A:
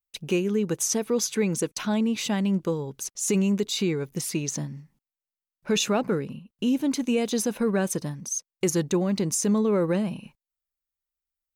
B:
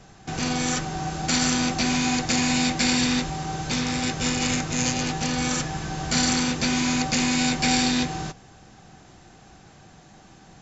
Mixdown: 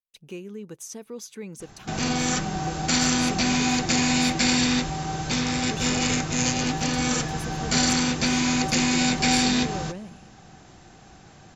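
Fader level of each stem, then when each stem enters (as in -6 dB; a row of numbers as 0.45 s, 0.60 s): -13.0 dB, +0.5 dB; 0.00 s, 1.60 s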